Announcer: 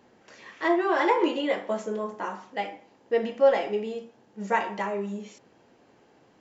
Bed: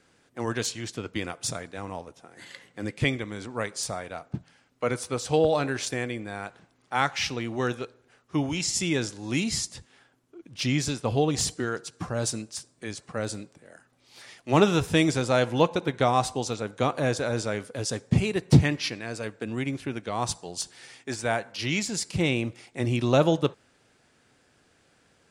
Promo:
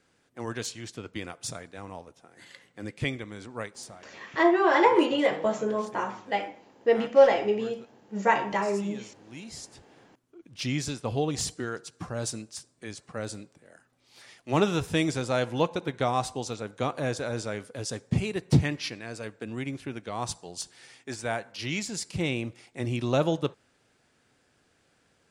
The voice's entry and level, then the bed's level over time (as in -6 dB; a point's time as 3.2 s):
3.75 s, +2.5 dB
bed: 3.61 s -5 dB
4.08 s -19 dB
9.25 s -19 dB
10.09 s -4 dB